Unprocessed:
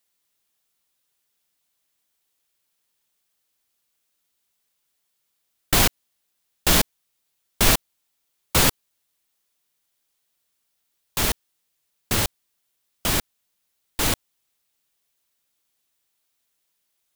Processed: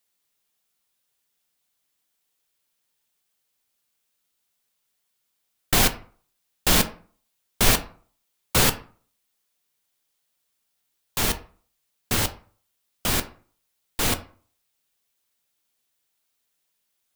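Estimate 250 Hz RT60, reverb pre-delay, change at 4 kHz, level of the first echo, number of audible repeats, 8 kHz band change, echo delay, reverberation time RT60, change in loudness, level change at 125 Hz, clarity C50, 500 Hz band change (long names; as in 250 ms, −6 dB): 0.50 s, 3 ms, −1.0 dB, no echo audible, no echo audible, −1.0 dB, no echo audible, 0.45 s, −1.0 dB, −1.0 dB, 15.0 dB, −0.5 dB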